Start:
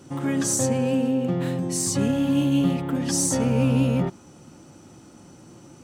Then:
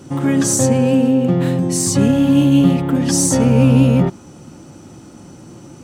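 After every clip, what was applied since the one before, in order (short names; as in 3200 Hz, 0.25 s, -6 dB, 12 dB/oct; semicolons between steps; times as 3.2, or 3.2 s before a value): low shelf 430 Hz +3.5 dB; gain +6.5 dB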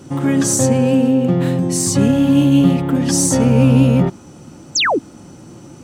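painted sound fall, 4.75–4.99, 240–7900 Hz -15 dBFS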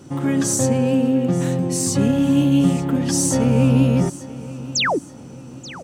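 feedback echo 0.882 s, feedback 41%, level -17 dB; gain -4 dB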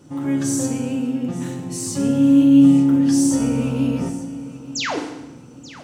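FDN reverb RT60 0.95 s, low-frequency decay 1.45×, high-frequency decay 0.95×, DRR 2.5 dB; gain -6.5 dB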